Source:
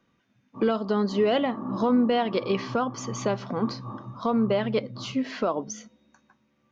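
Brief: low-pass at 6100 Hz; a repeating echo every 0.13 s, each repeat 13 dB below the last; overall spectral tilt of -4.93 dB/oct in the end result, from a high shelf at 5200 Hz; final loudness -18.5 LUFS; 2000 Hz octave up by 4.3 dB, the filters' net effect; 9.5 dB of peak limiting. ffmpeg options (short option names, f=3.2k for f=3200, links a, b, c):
-af "lowpass=6.1k,equalizer=f=2k:t=o:g=4.5,highshelf=f=5.2k:g=5.5,alimiter=limit=-21.5dB:level=0:latency=1,aecho=1:1:130|260|390:0.224|0.0493|0.0108,volume=12.5dB"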